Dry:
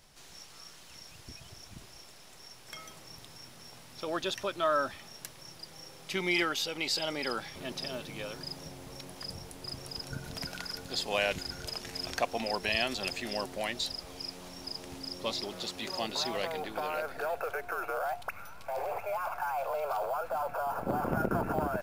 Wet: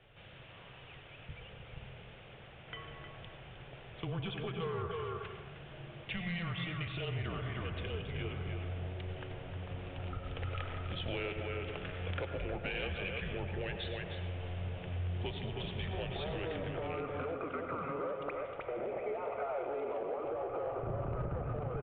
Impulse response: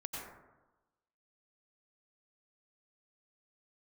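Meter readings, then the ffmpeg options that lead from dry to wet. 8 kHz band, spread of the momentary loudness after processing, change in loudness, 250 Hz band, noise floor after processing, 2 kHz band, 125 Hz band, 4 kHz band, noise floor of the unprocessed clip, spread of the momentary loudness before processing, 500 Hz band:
below −35 dB, 13 LU, −5.5 dB, −3.5 dB, −53 dBFS, −7.0 dB, +6.5 dB, −10.0 dB, −52 dBFS, 19 LU, −3.5 dB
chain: -filter_complex "[0:a]bandreject=frequency=121.4:width_type=h:width=4,bandreject=frequency=242.8:width_type=h:width=4,bandreject=frequency=364.2:width_type=h:width=4,asplit=2[link_01][link_02];[link_02]adelay=310,highpass=300,lowpass=3400,asoftclip=type=hard:threshold=-25dB,volume=-7dB[link_03];[link_01][link_03]amix=inputs=2:normalize=0,highpass=frequency=230:width_type=q:width=0.5412,highpass=frequency=230:width_type=q:width=1.307,lowpass=frequency=3100:width_type=q:width=0.5176,lowpass=frequency=3100:width_type=q:width=0.7071,lowpass=frequency=3100:width_type=q:width=1.932,afreqshift=-180,equalizer=frequency=125:width_type=o:width=1:gain=10,equalizer=frequency=250:width_type=o:width=1:gain=-10,equalizer=frequency=1000:width_type=o:width=1:gain=-10,equalizer=frequency=2000:width_type=o:width=1:gain=-7,aresample=8000,asoftclip=type=tanh:threshold=-30dB,aresample=44100,acompressor=threshold=-44dB:ratio=6,equalizer=frequency=230:width=0.53:gain=-4,asplit=2[link_04][link_05];[1:a]atrim=start_sample=2205[link_06];[link_05][link_06]afir=irnorm=-1:irlink=0,volume=0dB[link_07];[link_04][link_07]amix=inputs=2:normalize=0,volume=5.5dB"

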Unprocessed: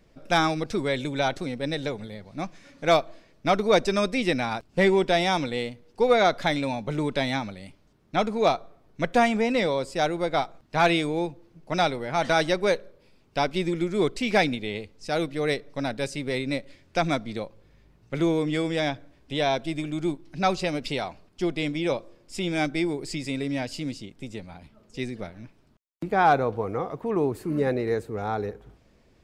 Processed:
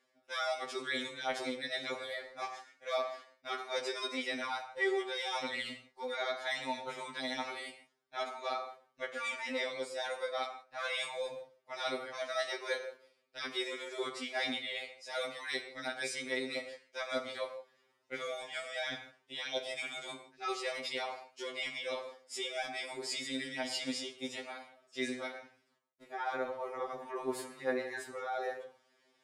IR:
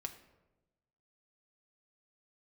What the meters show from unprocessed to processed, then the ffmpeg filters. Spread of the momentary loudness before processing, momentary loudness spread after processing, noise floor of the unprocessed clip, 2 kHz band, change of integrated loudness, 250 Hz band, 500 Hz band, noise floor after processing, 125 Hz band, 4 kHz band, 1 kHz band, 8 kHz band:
14 LU, 8 LU, −60 dBFS, −8.0 dB, −12.0 dB, −18.0 dB, −13.0 dB, −75 dBFS, −30.0 dB, −6.0 dB, −13.5 dB, −5.5 dB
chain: -filter_complex "[0:a]highpass=610,agate=range=-9dB:threshold=-51dB:ratio=16:detection=peak,areverse,acompressor=threshold=-40dB:ratio=5,areverse[link_01];[1:a]atrim=start_sample=2205,atrim=end_sample=3969,asetrate=22491,aresample=44100[link_02];[link_01][link_02]afir=irnorm=-1:irlink=0,afftfilt=real='re*2.45*eq(mod(b,6),0)':imag='im*2.45*eq(mod(b,6),0)':win_size=2048:overlap=0.75,volume=6.5dB"

